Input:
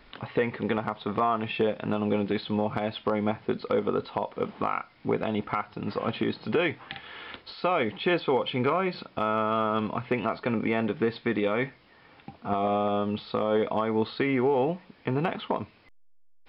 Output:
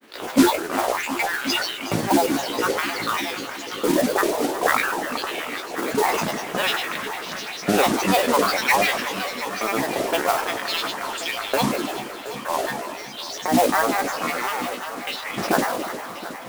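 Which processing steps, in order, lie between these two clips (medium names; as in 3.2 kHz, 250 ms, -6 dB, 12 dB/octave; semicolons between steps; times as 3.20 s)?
spectral sustain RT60 2.22 s; reverb removal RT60 0.73 s; LFO high-pass saw up 0.52 Hz 290–3500 Hz; modulation noise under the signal 10 dB; granulator, spray 12 ms, pitch spread up and down by 12 st; multi-head delay 361 ms, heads all three, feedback 47%, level -16 dB; trim +3 dB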